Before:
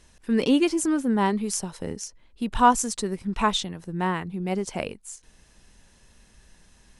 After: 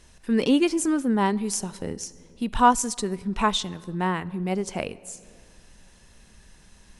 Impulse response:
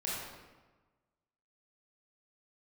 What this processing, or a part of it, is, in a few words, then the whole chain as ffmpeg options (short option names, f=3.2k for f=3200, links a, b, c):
ducked reverb: -filter_complex "[0:a]asplit=3[a][b][c];[1:a]atrim=start_sample=2205[d];[b][d]afir=irnorm=-1:irlink=0[e];[c]apad=whole_len=308673[f];[e][f]sidechaincompress=threshold=-42dB:ratio=4:attack=16:release=437,volume=-8dB[g];[a][g]amix=inputs=2:normalize=0"